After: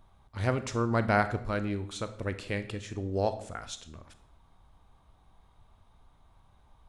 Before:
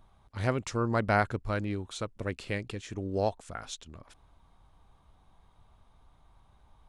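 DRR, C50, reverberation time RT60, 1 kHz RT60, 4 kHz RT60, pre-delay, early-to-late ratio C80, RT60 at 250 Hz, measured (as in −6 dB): 10.5 dB, 13.0 dB, 0.70 s, 0.65 s, 0.55 s, 26 ms, 16.0 dB, 0.80 s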